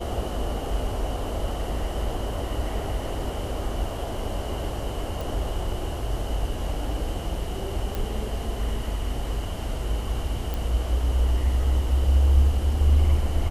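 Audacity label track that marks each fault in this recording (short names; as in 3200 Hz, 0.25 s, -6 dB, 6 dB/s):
5.210000	5.210000	pop
7.950000	7.950000	pop
10.540000	10.540000	pop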